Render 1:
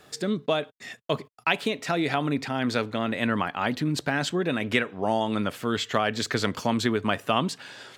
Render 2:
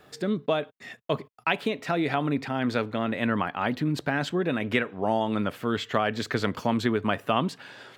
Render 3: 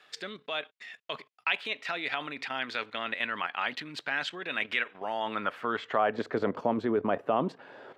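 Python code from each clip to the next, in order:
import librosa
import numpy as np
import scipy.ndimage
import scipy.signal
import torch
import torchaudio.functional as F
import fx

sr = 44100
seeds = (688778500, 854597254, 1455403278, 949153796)

y1 = fx.peak_eq(x, sr, hz=7400.0, db=-9.0, octaves=1.9)
y2 = fx.level_steps(y1, sr, step_db=10)
y2 = fx.filter_sweep_bandpass(y2, sr, from_hz=2800.0, to_hz=540.0, start_s=4.88, end_s=6.39, q=1.0)
y2 = F.gain(torch.from_numpy(y2), 7.5).numpy()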